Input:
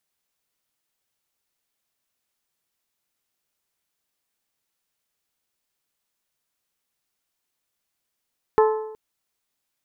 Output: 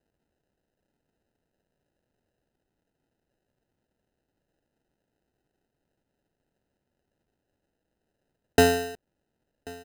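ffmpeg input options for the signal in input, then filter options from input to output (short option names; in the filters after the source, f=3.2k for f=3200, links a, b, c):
-f lavfi -i "aevalsrc='0.251*pow(10,-3*t/0.85)*sin(2*PI*435*t)+0.141*pow(10,-3*t/0.69)*sin(2*PI*870*t)+0.0794*pow(10,-3*t/0.654)*sin(2*PI*1044*t)+0.0447*pow(10,-3*t/0.611)*sin(2*PI*1305*t)+0.0251*pow(10,-3*t/0.561)*sin(2*PI*1740*t)':d=0.37:s=44100"
-af "acrusher=samples=39:mix=1:aa=0.000001,aecho=1:1:1086:0.075"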